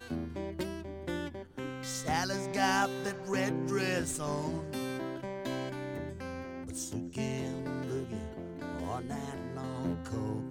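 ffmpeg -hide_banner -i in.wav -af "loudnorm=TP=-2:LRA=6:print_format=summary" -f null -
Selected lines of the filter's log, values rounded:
Input Integrated:    -36.1 LUFS
Input True Peak:     -16.0 dBTP
Input LRA:             5.6 LU
Input Threshold:     -46.1 LUFS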